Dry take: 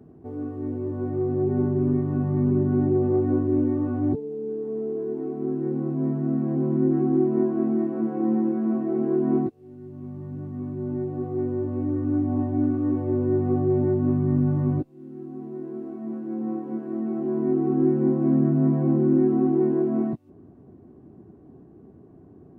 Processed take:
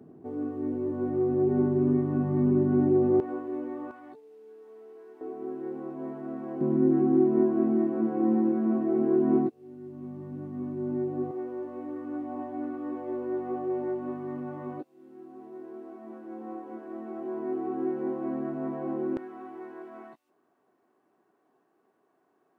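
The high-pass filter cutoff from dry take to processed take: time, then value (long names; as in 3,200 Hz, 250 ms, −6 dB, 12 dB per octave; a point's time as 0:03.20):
170 Hz
from 0:03.20 610 Hz
from 0:03.91 1,300 Hz
from 0:05.21 530 Hz
from 0:06.61 200 Hz
from 0:11.31 540 Hz
from 0:19.17 1,200 Hz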